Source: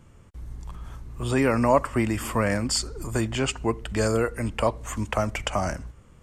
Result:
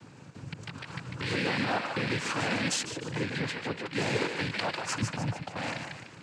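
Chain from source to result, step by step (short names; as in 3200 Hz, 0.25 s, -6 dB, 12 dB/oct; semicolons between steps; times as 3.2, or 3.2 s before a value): rattling part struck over -30 dBFS, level -14 dBFS; 5.01–5.56 tilt -4.5 dB/oct; compressor 12:1, threshold -31 dBFS, peak gain reduction 23 dB; thinning echo 0.148 s, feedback 47%, high-pass 550 Hz, level -4.5 dB; limiter -24 dBFS, peak gain reduction 8.5 dB; noise vocoder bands 8; 2.83–3.93 high shelf 2600 Hz -9.5 dB; gain +6 dB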